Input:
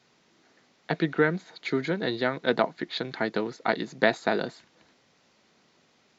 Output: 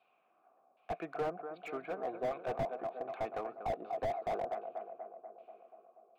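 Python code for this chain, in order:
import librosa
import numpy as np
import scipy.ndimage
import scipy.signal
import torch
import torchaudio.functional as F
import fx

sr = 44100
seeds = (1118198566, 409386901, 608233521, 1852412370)

p1 = scipy.signal.sosfilt(scipy.signal.butter(2, 4400.0, 'lowpass', fs=sr, output='sos'), x)
p2 = fx.filter_lfo_lowpass(p1, sr, shape='saw_down', hz=1.3, low_hz=630.0, high_hz=3400.0, q=1.5)
p3 = fx.vowel_filter(p2, sr, vowel='a')
p4 = p3 + fx.echo_tape(p3, sr, ms=242, feedback_pct=76, wet_db=-9.5, lp_hz=1300.0, drive_db=22.0, wow_cents=6, dry=0)
p5 = fx.slew_limit(p4, sr, full_power_hz=12.0)
y = p5 * librosa.db_to_amplitude(3.0)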